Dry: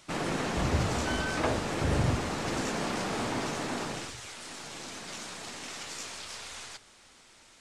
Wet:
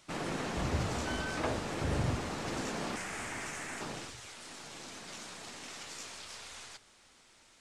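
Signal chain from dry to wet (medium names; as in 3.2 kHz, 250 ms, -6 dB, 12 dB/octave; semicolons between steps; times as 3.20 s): 2.96–3.81 s: graphic EQ 125/250/500/1000/2000/4000/8000 Hz -5/-7/-6/-4/+7/-8/+6 dB; trim -5 dB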